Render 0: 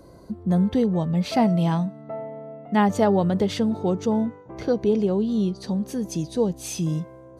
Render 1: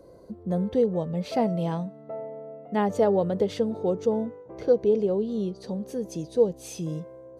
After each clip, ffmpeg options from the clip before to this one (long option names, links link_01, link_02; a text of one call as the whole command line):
ffmpeg -i in.wav -af "equalizer=frequency=490:width_type=o:width=0.75:gain=11.5,volume=-8dB" out.wav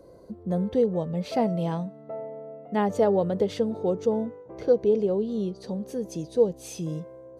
ffmpeg -i in.wav -af anull out.wav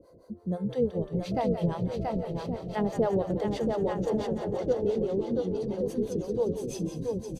ffmpeg -i in.wav -filter_complex "[0:a]asplit=2[link_01][link_02];[link_02]aecho=0:1:680|1122|1409|1596|1717:0.631|0.398|0.251|0.158|0.1[link_03];[link_01][link_03]amix=inputs=2:normalize=0,acrossover=split=530[link_04][link_05];[link_04]aeval=exprs='val(0)*(1-1/2+1/2*cos(2*PI*6*n/s))':channel_layout=same[link_06];[link_05]aeval=exprs='val(0)*(1-1/2-1/2*cos(2*PI*6*n/s))':channel_layout=same[link_07];[link_06][link_07]amix=inputs=2:normalize=0,asplit=2[link_08][link_09];[link_09]asplit=8[link_10][link_11][link_12][link_13][link_14][link_15][link_16][link_17];[link_10]adelay=174,afreqshift=-49,volume=-10dB[link_18];[link_11]adelay=348,afreqshift=-98,volume=-13.9dB[link_19];[link_12]adelay=522,afreqshift=-147,volume=-17.8dB[link_20];[link_13]adelay=696,afreqshift=-196,volume=-21.6dB[link_21];[link_14]adelay=870,afreqshift=-245,volume=-25.5dB[link_22];[link_15]adelay=1044,afreqshift=-294,volume=-29.4dB[link_23];[link_16]adelay=1218,afreqshift=-343,volume=-33.3dB[link_24];[link_17]adelay=1392,afreqshift=-392,volume=-37.1dB[link_25];[link_18][link_19][link_20][link_21][link_22][link_23][link_24][link_25]amix=inputs=8:normalize=0[link_26];[link_08][link_26]amix=inputs=2:normalize=0" out.wav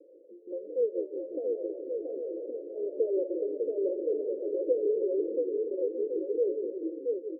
ffmpeg -i in.wav -filter_complex "[0:a]asplit=2[link_01][link_02];[link_02]aeval=exprs='0.0355*(abs(mod(val(0)/0.0355+3,4)-2)-1)':channel_layout=same,volume=-9dB[link_03];[link_01][link_03]amix=inputs=2:normalize=0,asuperpass=centerf=410:order=12:qfactor=1.5" out.wav